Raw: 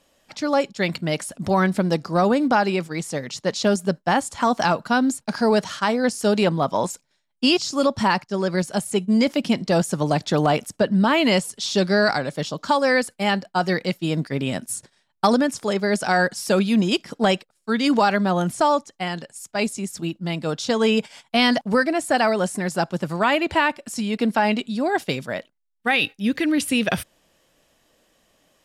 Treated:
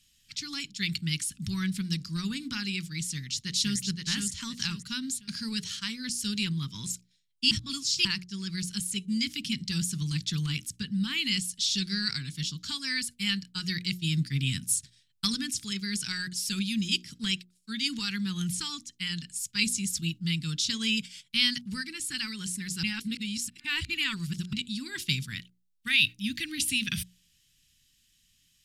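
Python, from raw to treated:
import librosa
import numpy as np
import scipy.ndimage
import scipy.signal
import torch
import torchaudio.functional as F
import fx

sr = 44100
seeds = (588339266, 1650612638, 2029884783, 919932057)

y = fx.echo_throw(x, sr, start_s=3.01, length_s=0.77, ms=520, feedback_pct=35, wet_db=-4.0)
y = fx.edit(y, sr, fx.reverse_span(start_s=7.51, length_s=0.54),
    fx.reverse_span(start_s=22.83, length_s=1.7), tone=tone)
y = fx.rider(y, sr, range_db=10, speed_s=2.0)
y = scipy.signal.sosfilt(scipy.signal.cheby1(2, 1.0, [120.0, 3300.0], 'bandstop', fs=sr, output='sos'), y)
y = fx.hum_notches(y, sr, base_hz=60, count=8)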